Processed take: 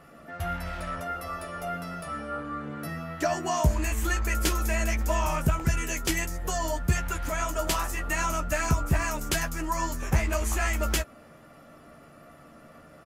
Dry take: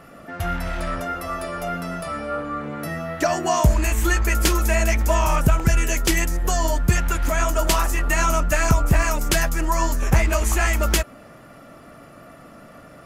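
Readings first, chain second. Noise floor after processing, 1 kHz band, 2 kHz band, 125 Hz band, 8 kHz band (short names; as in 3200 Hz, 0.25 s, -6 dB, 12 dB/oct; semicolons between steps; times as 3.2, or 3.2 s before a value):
-52 dBFS, -6.5 dB, -6.5 dB, -7.0 dB, -6.5 dB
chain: doubler 13 ms -7 dB; gain -7.5 dB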